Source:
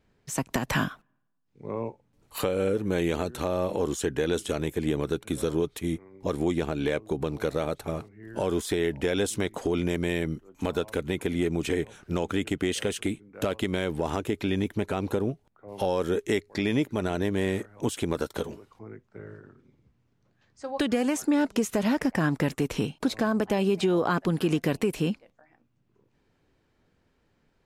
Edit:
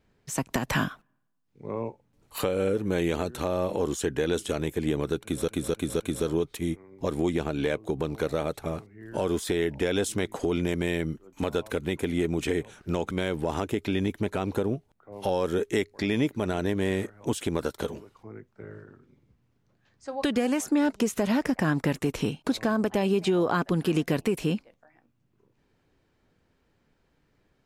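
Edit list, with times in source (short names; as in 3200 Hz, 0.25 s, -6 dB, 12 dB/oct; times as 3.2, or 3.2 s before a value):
5.22–5.48 loop, 4 plays
12.33–13.67 cut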